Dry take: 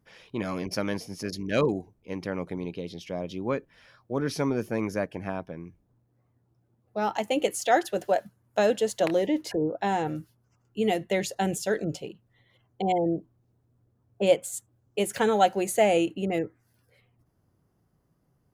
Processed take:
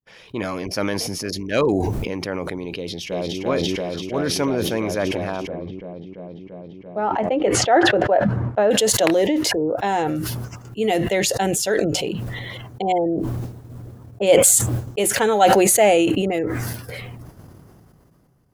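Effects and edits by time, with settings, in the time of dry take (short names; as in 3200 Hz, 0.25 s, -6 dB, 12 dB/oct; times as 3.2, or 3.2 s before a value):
2.77–3.41 echo throw 0.34 s, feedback 85%, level 0 dB
5.47–8.71 LPF 1500 Hz
whole clip: expander -57 dBFS; dynamic EQ 170 Hz, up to -6 dB, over -42 dBFS, Q 1.3; sustainer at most 20 dB/s; gain +5.5 dB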